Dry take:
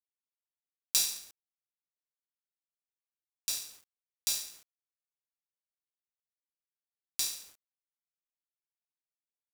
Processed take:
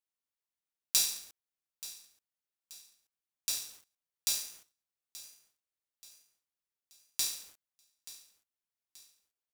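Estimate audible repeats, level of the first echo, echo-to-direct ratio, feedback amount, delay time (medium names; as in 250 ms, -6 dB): 3, -17.0 dB, -16.0 dB, 43%, 880 ms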